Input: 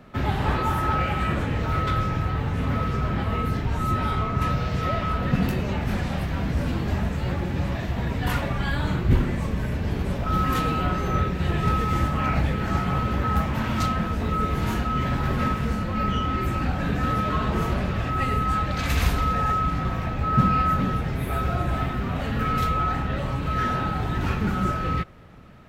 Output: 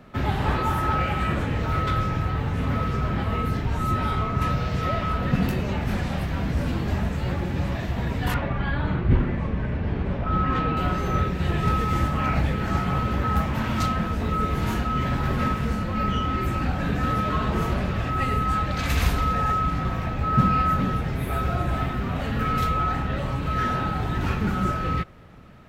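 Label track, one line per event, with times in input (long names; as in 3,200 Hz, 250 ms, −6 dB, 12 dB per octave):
8.340000	10.770000	low-pass filter 2,600 Hz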